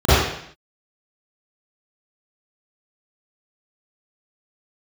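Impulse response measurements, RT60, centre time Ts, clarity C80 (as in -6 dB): 0.65 s, 99 ms, -0.5 dB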